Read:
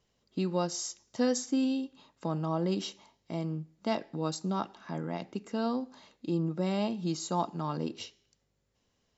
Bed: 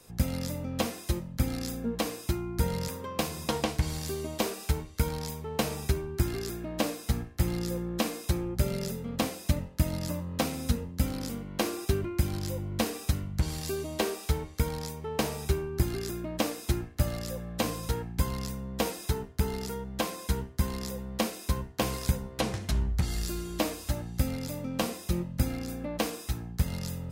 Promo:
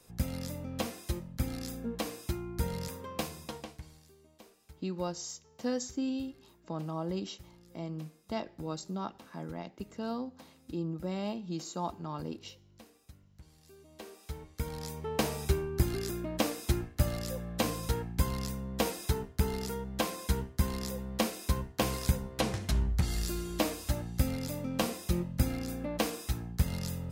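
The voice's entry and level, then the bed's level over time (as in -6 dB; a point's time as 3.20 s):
4.45 s, -5.0 dB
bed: 3.22 s -5 dB
4.12 s -26.5 dB
13.58 s -26.5 dB
14.99 s -1 dB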